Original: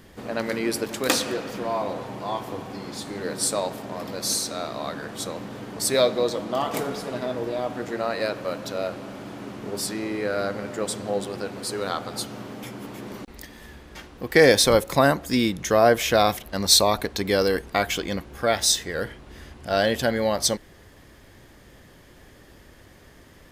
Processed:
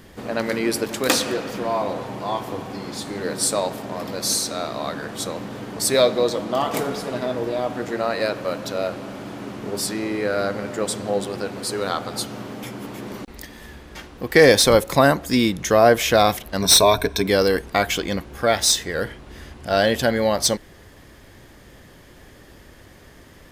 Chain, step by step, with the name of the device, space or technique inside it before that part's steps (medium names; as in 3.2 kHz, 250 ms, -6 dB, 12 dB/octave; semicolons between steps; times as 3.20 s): 16.61–17.27 s: rippled EQ curve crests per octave 1.6, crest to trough 12 dB; saturation between pre-emphasis and de-emphasis (treble shelf 2.1 kHz +9.5 dB; saturation -1.5 dBFS, distortion -17 dB; treble shelf 2.1 kHz -9.5 dB); trim +3.5 dB